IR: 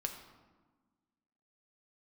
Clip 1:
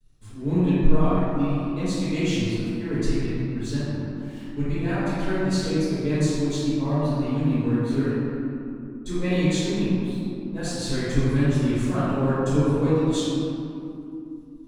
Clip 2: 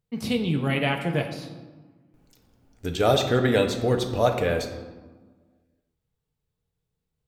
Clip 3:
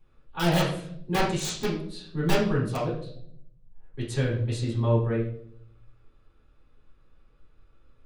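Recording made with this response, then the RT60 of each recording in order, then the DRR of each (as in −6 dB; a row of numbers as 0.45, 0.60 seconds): 2; 2.8, 1.3, 0.65 seconds; −16.5, 3.5, −9.5 decibels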